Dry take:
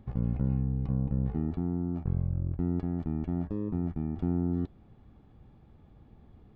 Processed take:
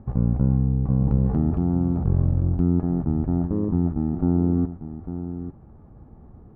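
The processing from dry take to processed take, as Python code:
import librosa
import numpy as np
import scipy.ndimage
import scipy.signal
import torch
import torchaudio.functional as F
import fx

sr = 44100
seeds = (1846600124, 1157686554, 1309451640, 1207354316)

y = scipy.signal.sosfilt(scipy.signal.butter(4, 1400.0, 'lowpass', fs=sr, output='sos'), x)
y = fx.transient(y, sr, attack_db=0, sustain_db=6, at=(1.0, 2.62), fade=0.02)
y = y + 10.0 ** (-10.5 / 20.0) * np.pad(y, (int(848 * sr / 1000.0), 0))[:len(y)]
y = fx.running_max(y, sr, window=3)
y = y * librosa.db_to_amplitude(8.5)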